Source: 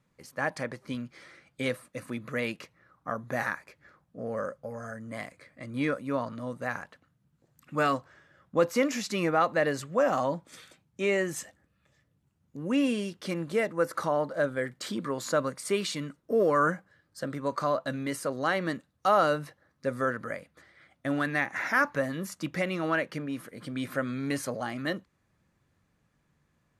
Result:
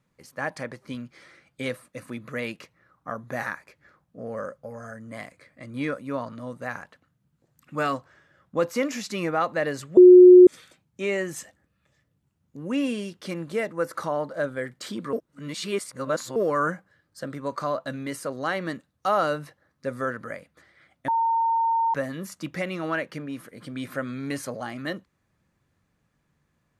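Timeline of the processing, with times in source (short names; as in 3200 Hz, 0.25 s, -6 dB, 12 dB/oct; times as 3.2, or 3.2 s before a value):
9.97–10.47 bleep 362 Hz -6 dBFS
15.13–16.36 reverse
21.08–21.94 bleep 913 Hz -19.5 dBFS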